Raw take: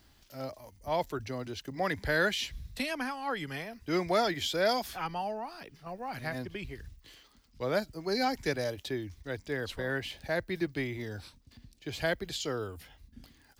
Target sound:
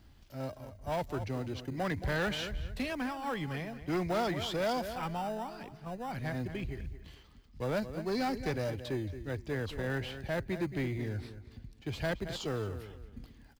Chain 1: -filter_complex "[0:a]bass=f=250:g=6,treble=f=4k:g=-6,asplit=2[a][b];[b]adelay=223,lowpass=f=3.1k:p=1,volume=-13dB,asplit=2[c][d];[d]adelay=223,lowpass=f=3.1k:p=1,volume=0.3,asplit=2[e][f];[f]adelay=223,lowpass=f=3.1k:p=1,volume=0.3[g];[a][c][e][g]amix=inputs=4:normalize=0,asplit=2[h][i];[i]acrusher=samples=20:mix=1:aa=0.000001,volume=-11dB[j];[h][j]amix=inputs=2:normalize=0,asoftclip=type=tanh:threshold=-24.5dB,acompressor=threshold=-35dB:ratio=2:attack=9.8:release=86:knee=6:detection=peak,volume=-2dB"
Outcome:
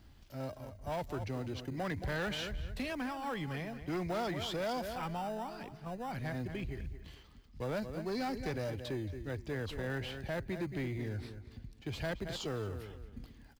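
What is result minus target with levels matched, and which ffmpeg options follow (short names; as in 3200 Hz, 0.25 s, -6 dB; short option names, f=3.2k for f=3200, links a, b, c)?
compressor: peak gain reduction +4.5 dB
-filter_complex "[0:a]bass=f=250:g=6,treble=f=4k:g=-6,asplit=2[a][b];[b]adelay=223,lowpass=f=3.1k:p=1,volume=-13dB,asplit=2[c][d];[d]adelay=223,lowpass=f=3.1k:p=1,volume=0.3,asplit=2[e][f];[f]adelay=223,lowpass=f=3.1k:p=1,volume=0.3[g];[a][c][e][g]amix=inputs=4:normalize=0,asplit=2[h][i];[i]acrusher=samples=20:mix=1:aa=0.000001,volume=-11dB[j];[h][j]amix=inputs=2:normalize=0,asoftclip=type=tanh:threshold=-24.5dB,volume=-2dB"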